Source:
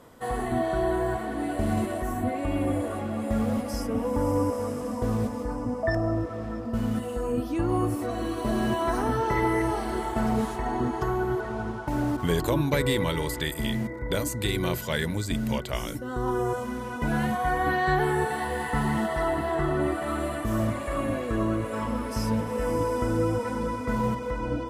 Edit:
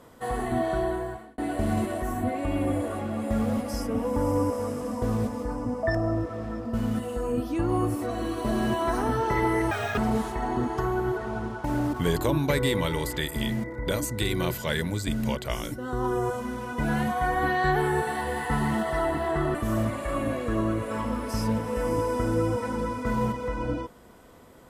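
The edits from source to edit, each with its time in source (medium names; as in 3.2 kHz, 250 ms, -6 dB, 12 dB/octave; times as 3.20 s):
0.74–1.38 s: fade out
9.71–10.21 s: speed 188%
19.78–20.37 s: delete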